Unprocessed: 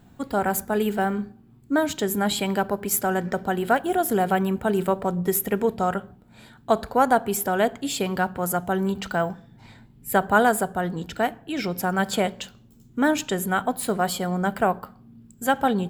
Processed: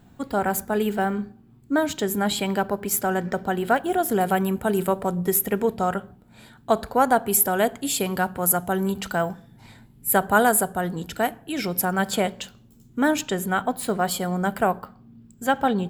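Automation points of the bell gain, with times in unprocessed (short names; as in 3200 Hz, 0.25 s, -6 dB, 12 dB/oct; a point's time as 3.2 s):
bell 11000 Hz 0.89 oct
-0.5 dB
from 4.21 s +9.5 dB
from 5.26 s +3.5 dB
from 7.27 s +11 dB
from 11.85 s +3.5 dB
from 13.21 s -2.5 dB
from 14.11 s +5.5 dB
from 14.82 s -5.5 dB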